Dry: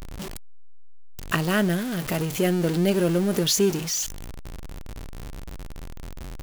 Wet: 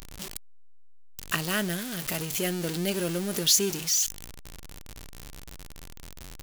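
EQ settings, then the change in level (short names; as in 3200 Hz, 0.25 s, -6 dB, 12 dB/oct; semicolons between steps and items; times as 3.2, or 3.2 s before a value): high shelf 2000 Hz +12 dB; -8.5 dB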